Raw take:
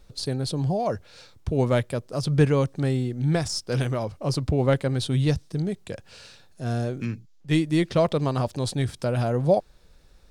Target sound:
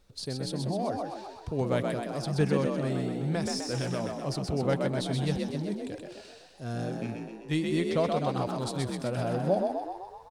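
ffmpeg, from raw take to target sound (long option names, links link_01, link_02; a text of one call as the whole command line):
ffmpeg -i in.wav -filter_complex "[0:a]lowshelf=frequency=82:gain=-7,asplit=9[link_01][link_02][link_03][link_04][link_05][link_06][link_07][link_08][link_09];[link_02]adelay=127,afreqshift=51,volume=-4dB[link_10];[link_03]adelay=254,afreqshift=102,volume=-8.6dB[link_11];[link_04]adelay=381,afreqshift=153,volume=-13.2dB[link_12];[link_05]adelay=508,afreqshift=204,volume=-17.7dB[link_13];[link_06]adelay=635,afreqshift=255,volume=-22.3dB[link_14];[link_07]adelay=762,afreqshift=306,volume=-26.9dB[link_15];[link_08]adelay=889,afreqshift=357,volume=-31.5dB[link_16];[link_09]adelay=1016,afreqshift=408,volume=-36.1dB[link_17];[link_01][link_10][link_11][link_12][link_13][link_14][link_15][link_16][link_17]amix=inputs=9:normalize=0,volume=-6.5dB" out.wav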